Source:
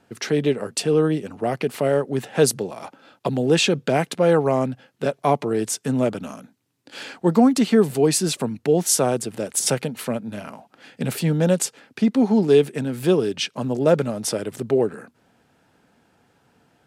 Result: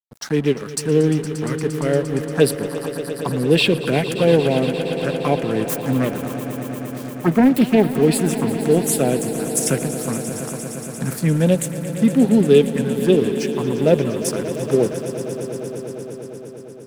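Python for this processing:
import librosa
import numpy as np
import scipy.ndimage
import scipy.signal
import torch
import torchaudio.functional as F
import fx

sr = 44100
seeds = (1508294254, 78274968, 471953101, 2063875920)

y = fx.self_delay(x, sr, depth_ms=0.48, at=(5.69, 8.01))
y = fx.env_phaser(y, sr, low_hz=320.0, high_hz=1200.0, full_db=-14.0)
y = np.sign(y) * np.maximum(np.abs(y) - 10.0 ** (-39.5 / 20.0), 0.0)
y = fx.echo_swell(y, sr, ms=116, loudest=5, wet_db=-14.5)
y = F.gain(torch.from_numpy(y), 4.5).numpy()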